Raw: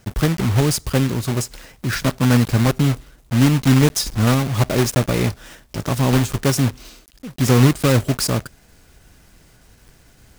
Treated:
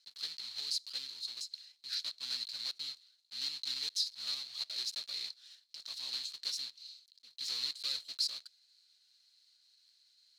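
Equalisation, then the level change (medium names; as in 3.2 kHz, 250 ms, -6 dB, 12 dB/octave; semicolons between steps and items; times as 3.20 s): band-pass filter 4.2 kHz, Q 15; tilt EQ +2 dB/octave; 0.0 dB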